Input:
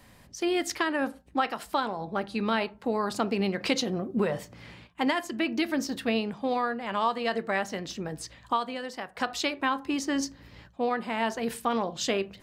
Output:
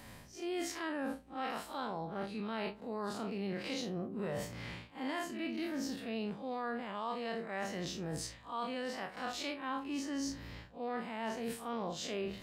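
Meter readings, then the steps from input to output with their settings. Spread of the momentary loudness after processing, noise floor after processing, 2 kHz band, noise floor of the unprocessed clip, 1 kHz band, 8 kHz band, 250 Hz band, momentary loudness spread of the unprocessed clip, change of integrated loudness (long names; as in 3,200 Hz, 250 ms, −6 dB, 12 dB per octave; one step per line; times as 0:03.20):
3 LU, −54 dBFS, −11.0 dB, −56 dBFS, −11.0 dB, −8.5 dB, −9.0 dB, 8 LU, −10.0 dB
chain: spectrum smeared in time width 90 ms
reversed playback
downward compressor 6 to 1, threshold −41 dBFS, peak gain reduction 16.5 dB
reversed playback
level +4.5 dB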